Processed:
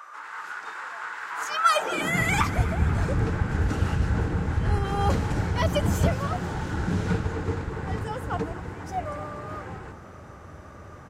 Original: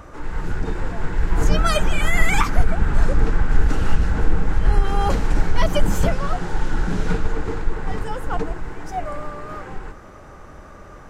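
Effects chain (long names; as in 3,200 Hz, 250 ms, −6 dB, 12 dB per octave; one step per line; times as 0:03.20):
high-pass filter sweep 1,200 Hz → 86 Hz, 0:01.68–0:02.28
echo with shifted repeats 241 ms, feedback 57%, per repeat +41 Hz, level −16.5 dB
level −3.5 dB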